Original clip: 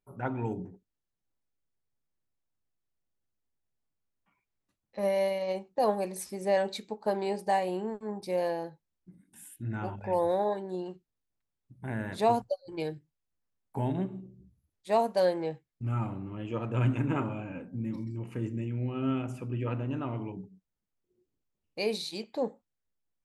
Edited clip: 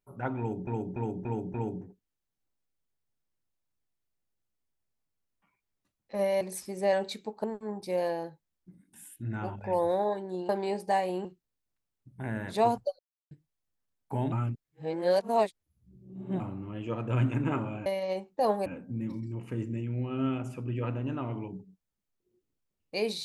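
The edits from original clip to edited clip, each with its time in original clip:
0:00.38–0:00.67: repeat, 5 plays
0:05.25–0:06.05: move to 0:17.50
0:07.08–0:07.84: move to 0:10.89
0:12.63–0:12.95: silence
0:13.96–0:16.04: reverse

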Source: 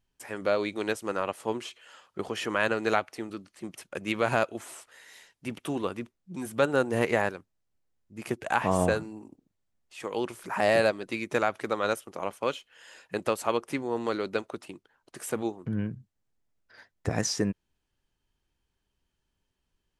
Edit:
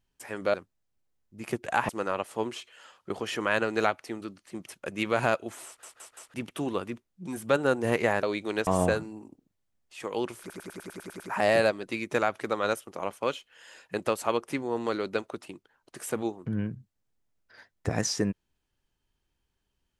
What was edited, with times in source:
0:00.54–0:00.98: swap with 0:07.32–0:08.67
0:04.75: stutter in place 0.17 s, 4 plays
0:10.40: stutter 0.10 s, 9 plays

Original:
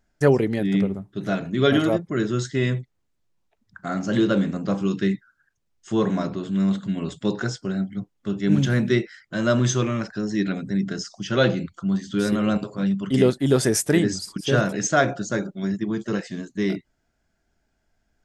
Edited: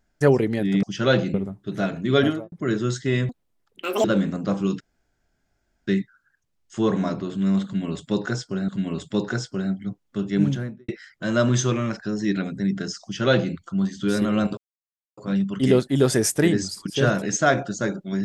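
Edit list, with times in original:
0:01.67–0:02.01: fade out and dull
0:02.78–0:04.25: play speed 195%
0:05.01: splice in room tone 1.07 s
0:06.79–0:07.82: repeat, 2 plays
0:08.40–0:08.99: fade out and dull
0:11.14–0:11.65: duplicate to 0:00.83
0:12.68: splice in silence 0.60 s

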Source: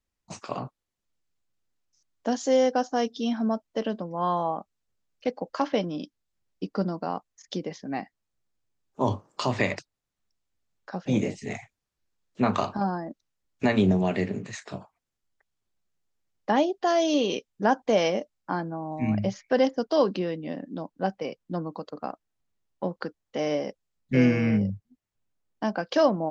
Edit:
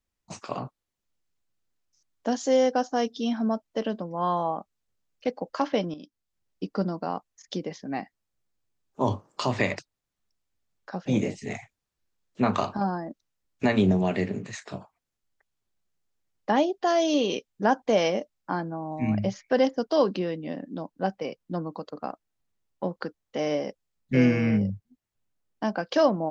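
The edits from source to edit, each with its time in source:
0:05.94–0:06.68: fade in equal-power, from −12 dB

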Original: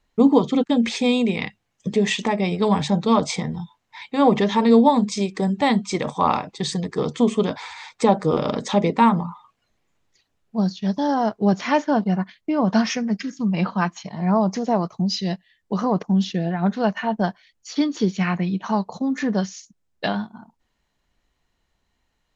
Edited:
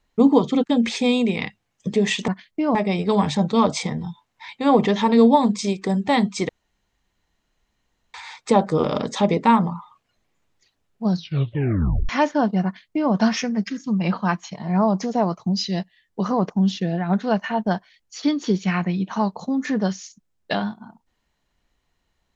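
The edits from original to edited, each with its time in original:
0:06.02–0:07.67: fill with room tone
0:10.64: tape stop 0.98 s
0:12.18–0:12.65: duplicate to 0:02.28

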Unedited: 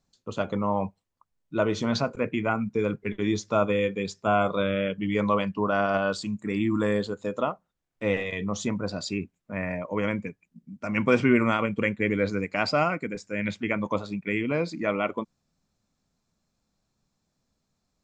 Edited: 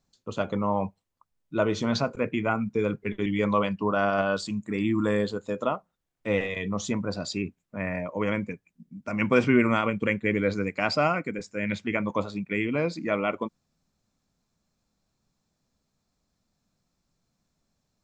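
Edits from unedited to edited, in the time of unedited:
0:03.26–0:05.02: remove

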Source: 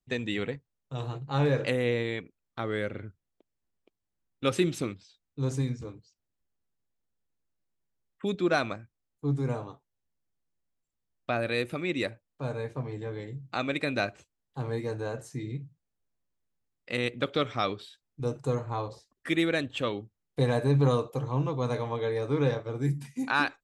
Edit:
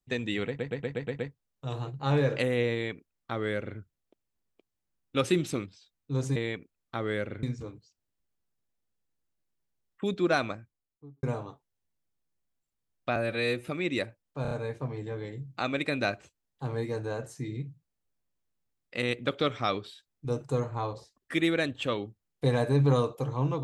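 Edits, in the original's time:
0:00.47: stutter 0.12 s, 7 plays
0:02.00–0:03.07: duplicate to 0:05.64
0:08.68–0:09.44: fade out and dull
0:11.37–0:11.71: time-stretch 1.5×
0:12.46: stutter 0.03 s, 4 plays

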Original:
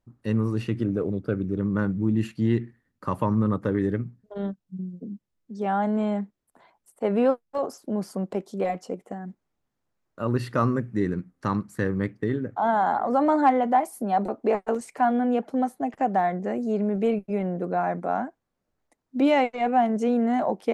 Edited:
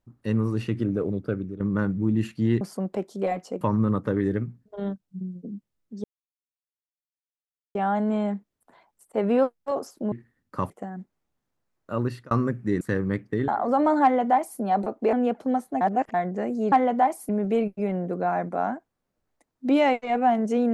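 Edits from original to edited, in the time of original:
0:01.15–0:01.60: fade out equal-power, to −13.5 dB
0:02.61–0:03.19: swap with 0:07.99–0:08.99
0:05.62: splice in silence 1.71 s
0:10.27–0:10.60: fade out
0:11.10–0:11.71: remove
0:12.38–0:12.90: remove
0:13.45–0:14.02: duplicate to 0:16.80
0:14.55–0:15.21: remove
0:15.89–0:16.22: reverse

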